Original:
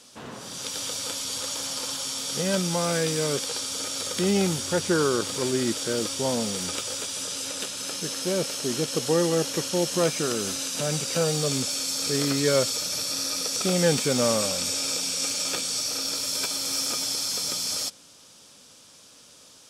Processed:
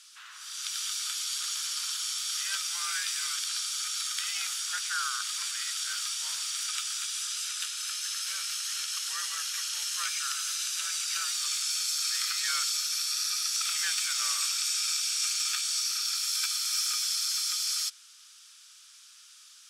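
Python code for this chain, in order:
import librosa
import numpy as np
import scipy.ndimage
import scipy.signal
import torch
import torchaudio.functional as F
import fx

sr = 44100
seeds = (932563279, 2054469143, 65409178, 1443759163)

y = fx.cheby_harmonics(x, sr, harmonics=(6,), levels_db=(-34,), full_scale_db=-7.5)
y = scipy.signal.sosfilt(scipy.signal.cheby1(4, 1.0, 1300.0, 'highpass', fs=sr, output='sos'), y)
y = y * librosa.db_to_amplitude(-1.0)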